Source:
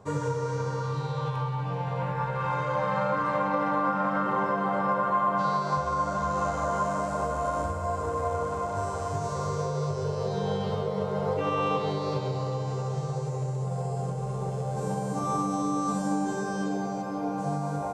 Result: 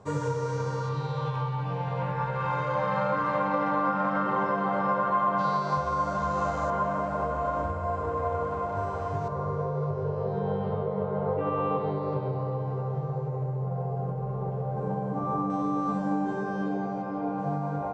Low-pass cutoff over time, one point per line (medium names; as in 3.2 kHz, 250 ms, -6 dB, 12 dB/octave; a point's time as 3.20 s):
8.6 kHz
from 0.89 s 5.4 kHz
from 6.70 s 2.8 kHz
from 9.28 s 1.4 kHz
from 15.50 s 2.3 kHz